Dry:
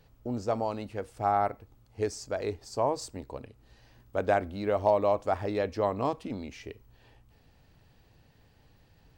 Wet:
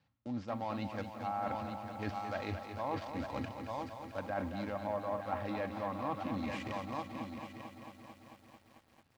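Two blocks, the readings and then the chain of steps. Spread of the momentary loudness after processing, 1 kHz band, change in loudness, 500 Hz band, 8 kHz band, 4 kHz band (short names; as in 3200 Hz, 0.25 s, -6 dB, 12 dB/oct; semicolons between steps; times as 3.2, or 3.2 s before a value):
11 LU, -7.0 dB, -9.0 dB, -11.0 dB, under -10 dB, -4.0 dB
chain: switching dead time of 0.085 ms; comb 3.7 ms, depth 37%; gate -48 dBFS, range -18 dB; on a send: echo 0.897 s -15 dB; on the sum: treble ducked by the level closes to 1500 Hz, closed at -21 dBFS; HPF 89 Hz 24 dB/oct; bell 430 Hz -13.5 dB 0.89 oct; reverse; compressor 6:1, threshold -45 dBFS, peak gain reduction 19.5 dB; reverse; LPF 4400 Hz 12 dB/oct; lo-fi delay 0.222 s, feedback 80%, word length 12-bit, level -8.5 dB; gain +9 dB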